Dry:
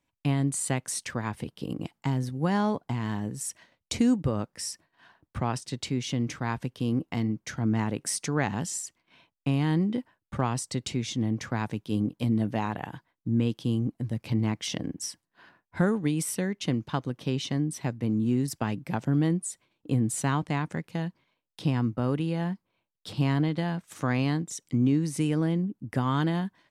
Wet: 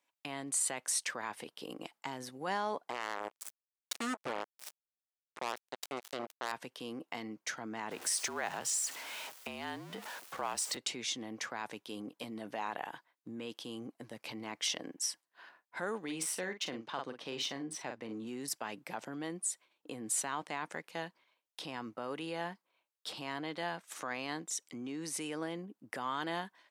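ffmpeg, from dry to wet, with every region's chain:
ffmpeg -i in.wav -filter_complex "[0:a]asettb=1/sr,asplit=3[link_01][link_02][link_03];[link_01]atrim=end=2.904[link_04];[link_02]atrim=start=2.9:end=6.52,asetpts=PTS-STARTPTS,afade=type=in:duration=0.004:curve=qsin,afade=type=out:start_time=3.616:duration=0.004:curve=qsin,aecho=1:1:290:0.15,atrim=end_sample=159642,acrusher=bits=3:mix=0:aa=0.5[link_05];[link_03]atrim=start=6.516[link_06];[link_04][link_05]acrossfade=duration=0.004:curve1=hsin:curve2=qsin[link_07];[link_07][link_06]acrossfade=duration=0.004:curve1=qsin:curve2=hsin,asettb=1/sr,asplit=3[link_08][link_09][link_10];[link_08]atrim=end=7.914[link_11];[link_09]atrim=start=7.91:end=10.77,asetpts=PTS-STARTPTS,afade=type=in:duration=0.004:curve=qsin,afade=type=out:start_time=2.856:duration=0.004:curve=qsin,aeval=exprs='val(0)+0.5*0.0126*sgn(val(0))':channel_layout=same,afreqshift=-46,acompressor=threshold=-29dB:ratio=2.5:attack=3.2:release=140:knee=1:detection=peak[link_12];[link_10]atrim=start=10.766[link_13];[link_11][link_12]acrossfade=duration=0.004:curve1=hsin:curve2=qsin[link_14];[link_14][link_13]acrossfade=duration=0.004:curve1=qsin:curve2=hsin,asettb=1/sr,asplit=3[link_15][link_16][link_17];[link_15]atrim=end=16.044[link_18];[link_16]atrim=start=16.04:end=18.27,asetpts=PTS-STARTPTS,afade=type=in:duration=0.004:curve=qsin,afade=type=out:start_time=2.226:duration=0.004:curve=qsin,adynamicsmooth=sensitivity=5:basefreq=6900,asplit=2[link_19][link_20];[link_20]adelay=44,volume=-9.5dB[link_21];[link_19][link_21]amix=inputs=2:normalize=0,atrim=end_sample=98343[link_22];[link_17]atrim=start=18.266[link_23];[link_18][link_22]acrossfade=duration=0.004:curve1=hsin:curve2=qsin[link_24];[link_24][link_23]acrossfade=duration=0.004:curve1=qsin:curve2=hsin,alimiter=limit=-21.5dB:level=0:latency=1:release=20,highpass=540" out.wav

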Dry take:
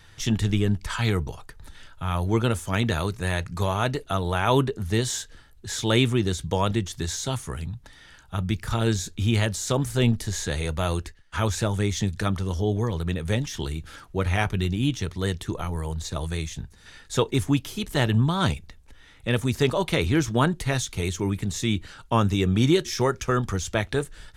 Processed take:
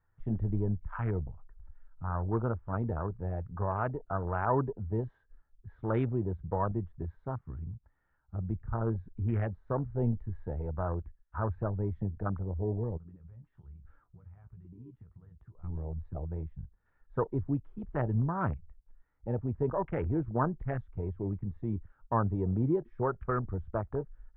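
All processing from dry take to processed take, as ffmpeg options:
ffmpeg -i in.wav -filter_complex "[0:a]asettb=1/sr,asplit=3[link_01][link_02][link_03];[link_01]atrim=end=12.974[link_04];[link_02]atrim=start=12.97:end=15.64,asetpts=PTS-STARTPTS,afade=type=in:duration=0.004:curve=qsin,afade=type=out:start_time=2.666:duration=0.004:curve=qsin,acompressor=threshold=-38dB:ratio=6:attack=3.2:release=140:knee=1:detection=peak,asplit=2[link_05][link_06];[link_06]adelay=17,volume=-9dB[link_07];[link_05][link_07]amix=inputs=2:normalize=0,atrim=end_sample=117747[link_08];[link_03]atrim=start=15.636[link_09];[link_04][link_08]acrossfade=duration=0.004:curve1=hsin:curve2=qsin[link_10];[link_10][link_09]acrossfade=duration=0.004:curve1=qsin:curve2=hsin,afwtdn=0.0398,lowpass=frequency=1400:width=0.5412,lowpass=frequency=1400:width=1.3066,equalizer=frequency=230:width_type=o:width=2.9:gain=-6,volume=-3.5dB" out.wav

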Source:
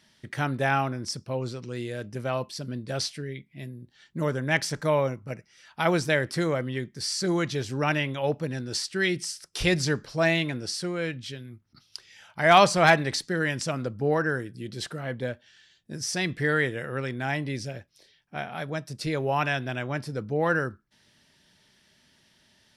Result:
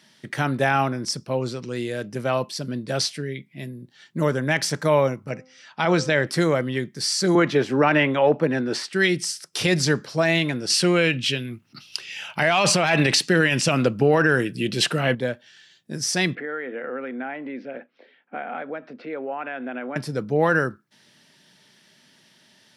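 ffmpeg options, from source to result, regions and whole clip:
ffmpeg -i in.wav -filter_complex "[0:a]asettb=1/sr,asplit=3[link_01][link_02][link_03];[link_01]atrim=end=5.294[link_04];[link_02]atrim=start=5.29:end=6.27,asetpts=PTS-STARTPTS,afade=type=in:duration=0.004:curve=qsin,afade=type=out:start_time=0.976:duration=0.004:curve=qsin,lowpass=frequency=7300:width=0.5412,lowpass=frequency=7300:width=1.3066,bandreject=frequency=258.2:width_type=h:width=4,bandreject=frequency=516.4:width_type=h:width=4,bandreject=frequency=774.6:width_type=h:width=4,bandreject=frequency=1032.8:width_type=h:width=4,bandreject=frequency=1291:width_type=h:width=4[link_05];[link_03]atrim=start=6.266[link_06];[link_04][link_05]acrossfade=duration=0.004:curve1=hsin:curve2=qsin[link_07];[link_07][link_06]acrossfade=duration=0.004:curve1=qsin:curve2=hsin,asettb=1/sr,asplit=3[link_08][link_09][link_10];[link_08]atrim=end=7.354[link_11];[link_09]atrim=start=7.35:end=8.93,asetpts=PTS-STARTPTS,afade=type=in:duration=0.004:curve=qsin,afade=type=out:start_time=1.576:duration=0.004:curve=qsin,acrossover=split=180 2700:gain=0.2 1 0.158[link_12][link_13][link_14];[link_12][link_13][link_14]amix=inputs=3:normalize=0,acontrast=68[link_15];[link_10]atrim=start=8.926[link_16];[link_11][link_15]acrossfade=duration=0.004:curve1=hsin:curve2=qsin[link_17];[link_17][link_16]acrossfade=duration=0.004:curve1=qsin:curve2=hsin,asettb=1/sr,asplit=3[link_18][link_19][link_20];[link_18]atrim=end=10.704[link_21];[link_19]atrim=start=10.7:end=15.15,asetpts=PTS-STARTPTS,afade=type=in:duration=0.004:curve=qsin,afade=type=out:start_time=4.446:duration=0.004:curve=qsin,acontrast=57,equalizer=frequency=2700:width=3.9:gain=12[link_22];[link_20]atrim=start=15.146[link_23];[link_21][link_22]acrossfade=duration=0.004:curve1=hsin:curve2=qsin[link_24];[link_24][link_23]acrossfade=duration=0.004:curve1=qsin:curve2=hsin,asettb=1/sr,asplit=3[link_25][link_26][link_27];[link_25]atrim=end=16.354[link_28];[link_26]atrim=start=16.35:end=19.96,asetpts=PTS-STARTPTS,afade=type=in:duration=0.004:curve=qsin,afade=type=out:start_time=3.606:duration=0.004:curve=qsin,acompressor=threshold=-38dB:ratio=6:attack=3.2:release=140:knee=1:detection=peak,highpass=frequency=230:width=0.5412,highpass=frequency=230:width=1.3066,equalizer=frequency=250:width_type=q:width=4:gain=10,equalizer=frequency=500:width_type=q:width=4:gain=9,equalizer=frequency=750:width_type=q:width=4:gain=6,equalizer=frequency=1400:width_type=q:width=4:gain=7,equalizer=frequency=2200:width_type=q:width=4:gain=3,lowpass=frequency=2700:width=0.5412,lowpass=frequency=2700:width=1.3066[link_29];[link_27]atrim=start=19.956[link_30];[link_28][link_29]acrossfade=duration=0.004:curve1=hsin:curve2=qsin[link_31];[link_31][link_30]acrossfade=duration=0.004:curve1=qsin:curve2=hsin,highpass=frequency=130:width=0.5412,highpass=frequency=130:width=1.3066,alimiter=level_in=13.5dB:limit=-1dB:release=50:level=0:latency=1,volume=-7.5dB" out.wav

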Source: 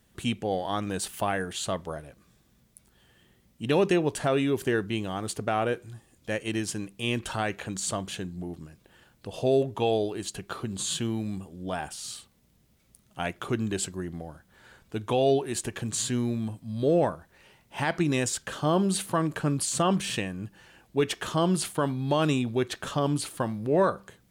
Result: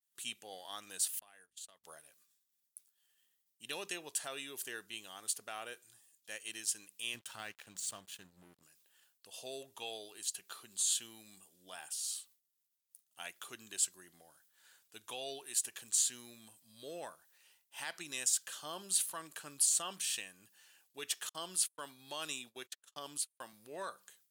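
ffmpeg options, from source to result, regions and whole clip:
ffmpeg -i in.wav -filter_complex "[0:a]asettb=1/sr,asplit=3[link_01][link_02][link_03];[link_01]atrim=end=1.194[link_04];[link_02]atrim=start=1.19:end=1.84,asetpts=PTS-STARTPTS,afade=type=in:duration=0.004:curve=qsin,afade=type=out:start_time=0.646:duration=0.004:curve=qsin,agate=range=-37dB:threshold=-33dB:ratio=16:release=100:detection=peak,aeval=exprs='val(0)+0.00126*(sin(2*PI*50*n/s)+sin(2*PI*2*50*n/s)/2+sin(2*PI*3*50*n/s)/3+sin(2*PI*4*50*n/s)/4+sin(2*PI*5*50*n/s)/5)':channel_layout=same,acompressor=threshold=-43dB:ratio=5:attack=3.2:release=140:knee=1:detection=peak[link_05];[link_03]atrim=start=1.836[link_06];[link_04][link_05]acrossfade=duration=0.004:curve1=hsin:curve2=qsin[link_07];[link_07][link_06]acrossfade=duration=0.004:curve1=qsin:curve2=hsin,asettb=1/sr,asplit=3[link_08][link_09][link_10];[link_08]atrim=end=7.144[link_11];[link_09]atrim=start=7.14:end=8.63,asetpts=PTS-STARTPTS,afade=type=in:duration=0.004:curve=qsin,afade=type=out:start_time=1.486:duration=0.004:curve=qsin,aeval=exprs='sgn(val(0))*max(abs(val(0))-0.00708,0)':channel_layout=same,bass=frequency=250:gain=11,treble=frequency=4000:gain=-7[link_12];[link_10]atrim=start=8.626[link_13];[link_11][link_12]acrossfade=duration=0.004:curve1=hsin:curve2=qsin[link_14];[link_14][link_13]acrossfade=duration=0.004:curve1=qsin:curve2=hsin,asettb=1/sr,asplit=3[link_15][link_16][link_17];[link_15]atrim=end=21.294[link_18];[link_16]atrim=start=21.29:end=23.53,asetpts=PTS-STARTPTS,afade=type=in:duration=0.004:curve=qsin,afade=type=out:start_time=2.236:duration=0.004:curve=qsin,agate=range=-43dB:threshold=-33dB:ratio=16:release=100:detection=peak,highpass=120[link_19];[link_17]atrim=start=23.526[link_20];[link_18][link_19]acrossfade=duration=0.004:curve1=hsin:curve2=qsin[link_21];[link_21][link_20]acrossfade=duration=0.004:curve1=qsin:curve2=hsin,bandreject=frequency=2200:width=18,agate=range=-33dB:threshold=-54dB:ratio=3:detection=peak,aderivative" out.wav

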